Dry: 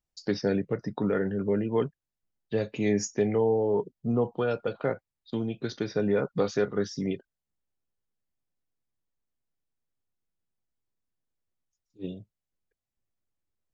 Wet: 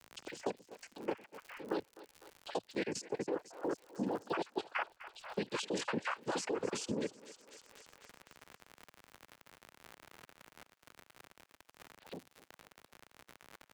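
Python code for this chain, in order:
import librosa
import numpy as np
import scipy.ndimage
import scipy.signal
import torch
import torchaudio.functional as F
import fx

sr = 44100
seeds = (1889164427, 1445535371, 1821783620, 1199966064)

p1 = fx.spec_dropout(x, sr, seeds[0], share_pct=42)
p2 = fx.doppler_pass(p1, sr, speed_mps=7, closest_m=4.2, pass_at_s=5.84)
p3 = scipy.signal.sosfilt(scipy.signal.butter(2, 310.0, 'highpass', fs=sr, output='sos'), p2)
p4 = fx.high_shelf(p3, sr, hz=2400.0, db=8.5)
p5 = fx.level_steps(p4, sr, step_db=23)
p6 = fx.noise_vocoder(p5, sr, seeds[1], bands=8)
p7 = fx.dmg_crackle(p6, sr, seeds[2], per_s=73.0, level_db=-64.0)
p8 = p7 + fx.echo_thinned(p7, sr, ms=251, feedback_pct=49, hz=600.0, wet_db=-18.0, dry=0)
p9 = fx.band_squash(p8, sr, depth_pct=70)
y = F.gain(torch.from_numpy(p9), 12.5).numpy()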